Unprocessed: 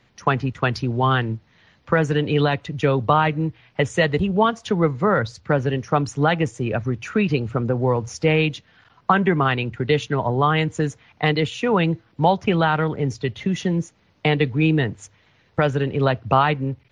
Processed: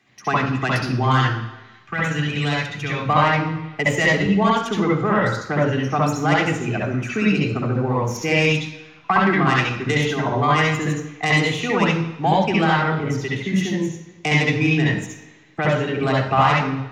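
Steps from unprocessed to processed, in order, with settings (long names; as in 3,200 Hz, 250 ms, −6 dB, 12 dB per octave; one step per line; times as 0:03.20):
stylus tracing distortion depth 0.058 ms
0:01.23–0:03.00: drawn EQ curve 110 Hz 0 dB, 370 Hz −10 dB, 2,200 Hz 0 dB
convolution reverb RT60 1.1 s, pre-delay 61 ms, DRR −4 dB
level −1.5 dB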